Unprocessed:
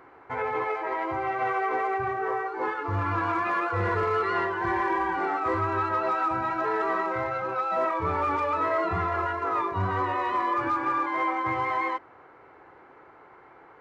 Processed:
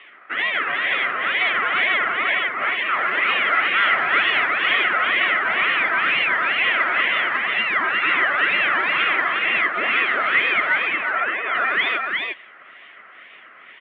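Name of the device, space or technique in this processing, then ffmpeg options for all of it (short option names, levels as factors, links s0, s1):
voice changer toy: -filter_complex "[0:a]aeval=exprs='val(0)*sin(2*PI*890*n/s+890*0.7/2.1*sin(2*PI*2.1*n/s))':c=same,highpass=440,equalizer=f=490:t=q:w=4:g=-6,equalizer=f=880:t=q:w=4:g=-9,equalizer=f=1300:t=q:w=4:g=8,equalizer=f=2000:t=q:w=4:g=10,equalizer=f=3200:t=q:w=4:g=8,lowpass=f=3900:w=0.5412,lowpass=f=3900:w=1.3066,asettb=1/sr,asplit=3[s0][s1][s2];[s0]atrim=end=10.844[s3];[s1]atrim=start=10.84:end=11.55,asetpts=PTS-STARTPTS,afade=t=in:d=0.004:c=qsin,afade=t=out:st=0.706:d=0.004:c=qsin,acrossover=split=280 2200:gain=0.224 1 0.0631[s4][s5][s6];[s4][s5][s6]amix=inputs=3:normalize=0[s7];[s2]atrim=start=11.546[s8];[s3][s7]acrossfade=d=0.004:c1=hsin:c2=qsin[s9];[s9][s8]acrossfade=d=0.004:c1=qsin:c2=hsin,aecho=1:1:358:0.668,volume=1.78"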